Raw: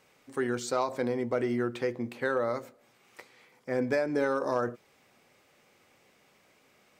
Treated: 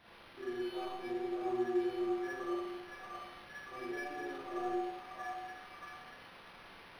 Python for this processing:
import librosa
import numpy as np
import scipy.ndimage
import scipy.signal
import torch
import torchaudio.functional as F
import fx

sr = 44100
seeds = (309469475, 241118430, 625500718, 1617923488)

p1 = fx.peak_eq(x, sr, hz=1600.0, db=-4.0, octaves=0.99)
p2 = fx.stiff_resonator(p1, sr, f0_hz=350.0, decay_s=0.65, stiffness=0.03)
p3 = fx.quant_dither(p2, sr, seeds[0], bits=8, dither='triangular')
p4 = p2 + (p3 * librosa.db_to_amplitude(-9.5))
p5 = fx.air_absorb(p4, sr, metres=150.0)
p6 = p5 + fx.echo_stepped(p5, sr, ms=631, hz=910.0, octaves=0.7, feedback_pct=70, wet_db=-1.0, dry=0)
p7 = fx.rev_schroeder(p6, sr, rt60_s=0.83, comb_ms=33, drr_db=-8.0)
p8 = np.interp(np.arange(len(p7)), np.arange(len(p7))[::6], p7[::6])
y = p8 * librosa.db_to_amplitude(2.5)